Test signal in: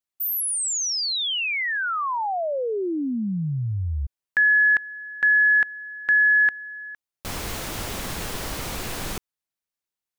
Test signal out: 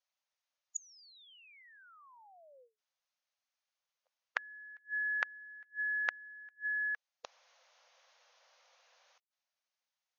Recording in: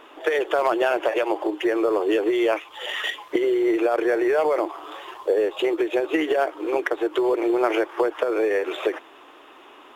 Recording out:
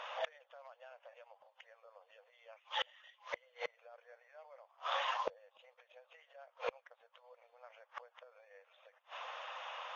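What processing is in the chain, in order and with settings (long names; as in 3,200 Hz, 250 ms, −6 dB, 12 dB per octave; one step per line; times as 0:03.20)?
linear-phase brick-wall band-pass 480–6,800 Hz
gate with flip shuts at −27 dBFS, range −36 dB
level +2 dB
Ogg Vorbis 48 kbit/s 22,050 Hz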